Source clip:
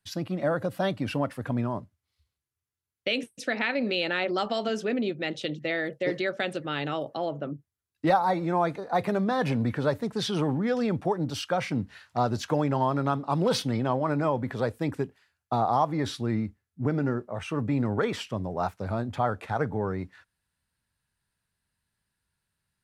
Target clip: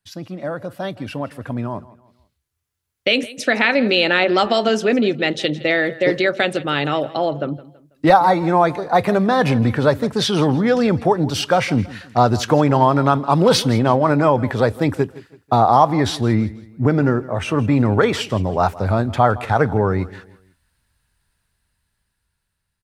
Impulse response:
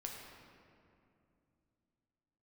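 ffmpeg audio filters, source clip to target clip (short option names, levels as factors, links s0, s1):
-af "asubboost=boost=2.5:cutoff=81,dynaudnorm=f=650:g=7:m=6.68,aecho=1:1:164|328|492:0.112|0.0415|0.0154"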